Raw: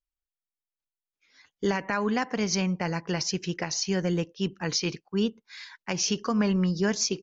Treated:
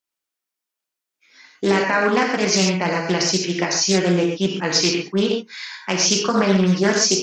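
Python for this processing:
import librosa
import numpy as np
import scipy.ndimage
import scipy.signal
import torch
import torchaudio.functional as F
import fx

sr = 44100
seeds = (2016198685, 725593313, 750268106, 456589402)

y = scipy.signal.sosfilt(scipy.signal.butter(2, 200.0, 'highpass', fs=sr, output='sos'), x)
y = fx.rev_gated(y, sr, seeds[0], gate_ms=160, shape='flat', drr_db=-1.0)
y = fx.doppler_dist(y, sr, depth_ms=0.27)
y = y * 10.0 ** (7.5 / 20.0)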